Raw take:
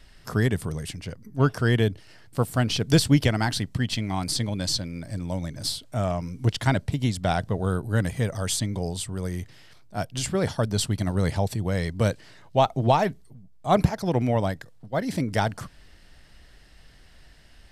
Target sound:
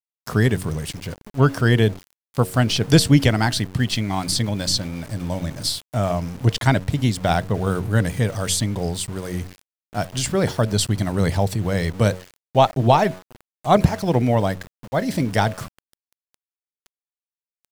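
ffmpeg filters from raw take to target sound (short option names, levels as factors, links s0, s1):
-af "bandreject=f=92.39:t=h:w=4,bandreject=f=184.78:t=h:w=4,bandreject=f=277.17:t=h:w=4,bandreject=f=369.56:t=h:w=4,bandreject=f=461.95:t=h:w=4,bandreject=f=554.34:t=h:w=4,bandreject=f=646.73:t=h:w=4,aeval=exprs='val(0)*gte(abs(val(0)),0.01)':c=same,volume=1.78"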